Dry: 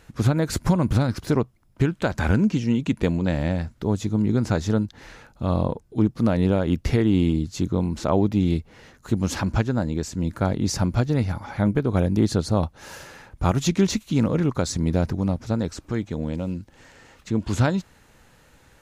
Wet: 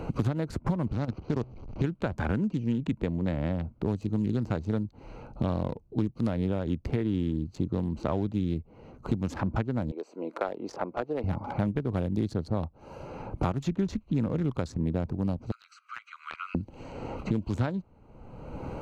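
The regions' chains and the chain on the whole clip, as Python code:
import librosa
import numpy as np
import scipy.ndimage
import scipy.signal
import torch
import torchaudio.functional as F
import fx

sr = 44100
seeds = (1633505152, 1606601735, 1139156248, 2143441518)

y = fx.chain(x, sr, fx.delta_mod(bps=32000, step_db=-29.0),
    fx.level_steps(step_db=11), at=(0.87, 1.84))
y = fx.chain(y, sr, fx.highpass(hz=410.0, slope=24),
    fx.high_shelf(hz=3400.0, db=-6.0),
    fx.notch(hz=910.0, q=21.0), at=(9.91, 11.24))
y = fx.chain(y, sr, fx.steep_highpass(hz=1200.0, slope=96),
    fx.band_squash(depth_pct=70), at=(15.51, 16.55))
y = fx.wiener(y, sr, points=25)
y = fx.high_shelf(y, sr, hz=5900.0, db=-6.5)
y = fx.band_squash(y, sr, depth_pct=100)
y = y * 10.0 ** (-7.5 / 20.0)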